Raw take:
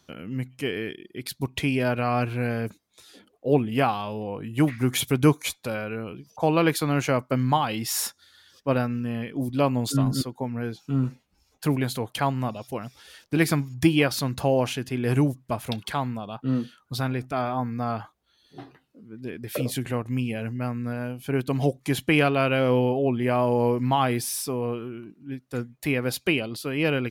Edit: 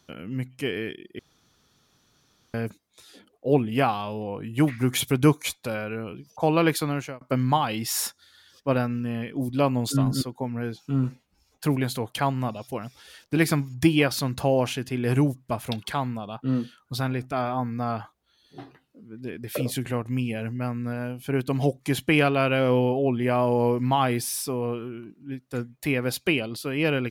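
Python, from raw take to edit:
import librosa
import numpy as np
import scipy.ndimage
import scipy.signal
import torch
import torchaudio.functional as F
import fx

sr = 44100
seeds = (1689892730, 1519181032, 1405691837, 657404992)

y = fx.edit(x, sr, fx.room_tone_fill(start_s=1.19, length_s=1.35),
    fx.fade_out_span(start_s=6.78, length_s=0.43), tone=tone)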